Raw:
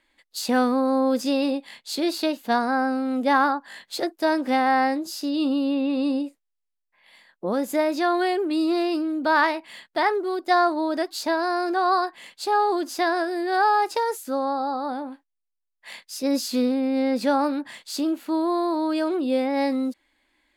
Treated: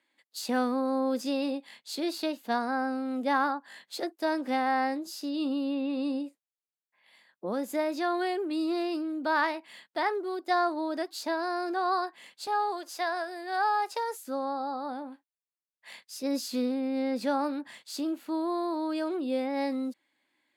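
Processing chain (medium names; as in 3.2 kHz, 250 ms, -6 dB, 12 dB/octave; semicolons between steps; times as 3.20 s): high-pass 150 Hz 24 dB/octave, from 12.47 s 440 Hz, from 14.19 s 110 Hz; trim -7 dB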